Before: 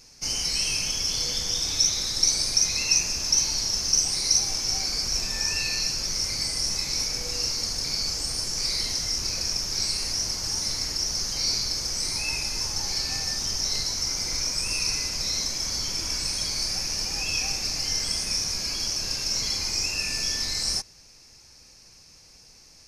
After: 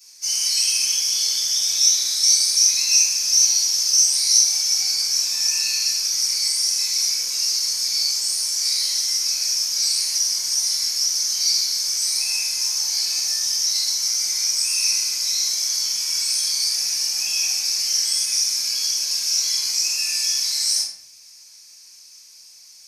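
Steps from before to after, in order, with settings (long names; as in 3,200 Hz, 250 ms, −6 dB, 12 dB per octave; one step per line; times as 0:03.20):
first difference
rectangular room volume 92 cubic metres, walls mixed, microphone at 3.6 metres
level −2.5 dB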